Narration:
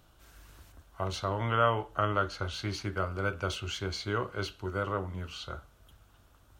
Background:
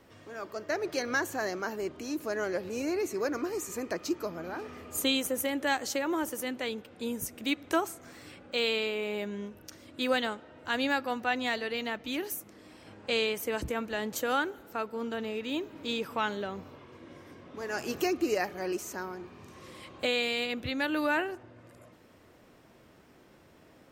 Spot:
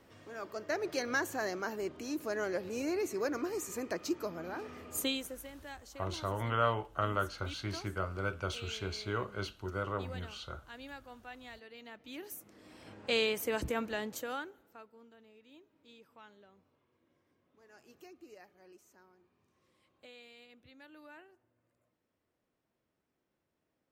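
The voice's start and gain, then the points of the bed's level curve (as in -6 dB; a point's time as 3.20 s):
5.00 s, -4.0 dB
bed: 4.98 s -3 dB
5.53 s -19 dB
11.70 s -19 dB
12.83 s -1.5 dB
13.86 s -1.5 dB
15.14 s -25.5 dB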